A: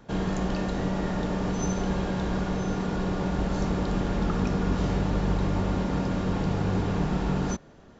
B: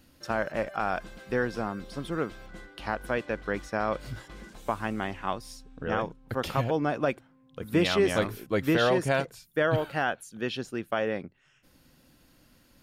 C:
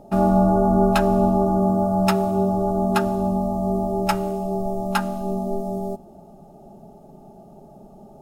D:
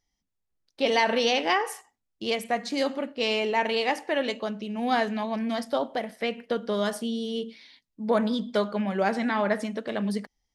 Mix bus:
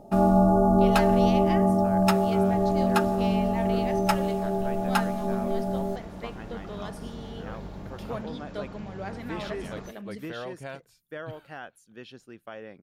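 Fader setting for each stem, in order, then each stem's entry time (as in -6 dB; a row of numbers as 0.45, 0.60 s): -15.0, -13.0, -2.5, -12.5 dB; 2.35, 1.55, 0.00, 0.00 s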